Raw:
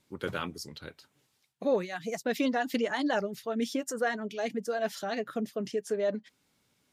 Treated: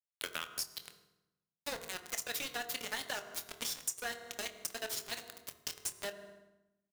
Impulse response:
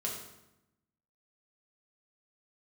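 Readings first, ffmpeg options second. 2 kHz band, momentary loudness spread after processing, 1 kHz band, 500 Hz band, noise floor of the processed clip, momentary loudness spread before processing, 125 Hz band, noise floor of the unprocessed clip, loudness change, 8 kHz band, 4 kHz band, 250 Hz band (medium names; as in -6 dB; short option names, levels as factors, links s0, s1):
-5.5 dB, 7 LU, -11.0 dB, -16.5 dB, under -85 dBFS, 8 LU, -15.5 dB, -74 dBFS, -7.5 dB, +6.0 dB, +1.5 dB, -22.5 dB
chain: -filter_complex "[0:a]aderivative,aeval=exprs='val(0)*gte(abs(val(0)),0.00668)':c=same,asplit=2[s0][s1];[s1]adelay=25,volume=0.224[s2];[s0][s2]amix=inputs=2:normalize=0,asplit=2[s3][s4];[1:a]atrim=start_sample=2205,highshelf=f=2700:g=-10[s5];[s4][s5]afir=irnorm=-1:irlink=0,volume=0.501[s6];[s3][s6]amix=inputs=2:normalize=0,acompressor=threshold=0.00282:ratio=6,volume=6.31"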